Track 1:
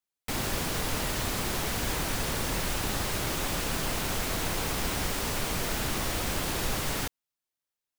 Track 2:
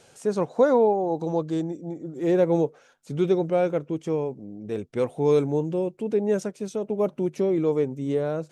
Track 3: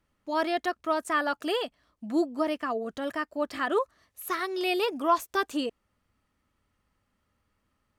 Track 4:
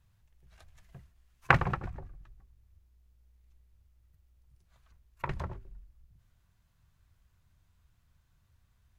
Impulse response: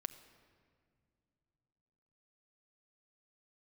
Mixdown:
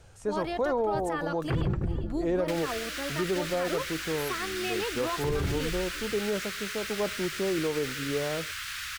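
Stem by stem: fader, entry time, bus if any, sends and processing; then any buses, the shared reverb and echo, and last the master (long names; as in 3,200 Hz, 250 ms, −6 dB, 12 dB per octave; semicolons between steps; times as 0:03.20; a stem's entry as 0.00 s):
+1.5 dB, 2.20 s, no send, no echo send, Butterworth high-pass 1,300 Hz 48 dB per octave; high-shelf EQ 6,100 Hz −12 dB
−9.0 dB, 0.00 s, send −7 dB, no echo send, parametric band 1,200 Hz +6 dB 1.5 octaves
−4.0 dB, 0.00 s, no send, echo send −18.5 dB, brickwall limiter −20.5 dBFS, peak gain reduction 8.5 dB
0.0 dB, 0.00 s, no send, no echo send, low shelf with overshoot 530 Hz +12 dB, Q 1.5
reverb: on, pre-delay 6 ms
echo: repeating echo 399 ms, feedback 45%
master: brickwall limiter −19.5 dBFS, peak gain reduction 16.5 dB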